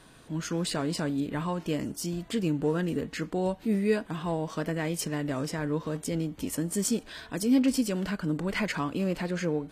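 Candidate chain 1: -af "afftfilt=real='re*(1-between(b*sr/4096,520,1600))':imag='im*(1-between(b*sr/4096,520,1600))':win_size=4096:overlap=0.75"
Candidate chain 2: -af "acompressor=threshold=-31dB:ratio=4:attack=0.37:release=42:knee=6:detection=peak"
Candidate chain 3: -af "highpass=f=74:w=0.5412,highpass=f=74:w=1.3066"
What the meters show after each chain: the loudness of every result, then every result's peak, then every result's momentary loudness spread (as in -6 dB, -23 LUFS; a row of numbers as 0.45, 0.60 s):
-30.5, -36.5, -30.0 LUFS; -14.0, -24.0, -14.5 dBFS; 7, 3, 6 LU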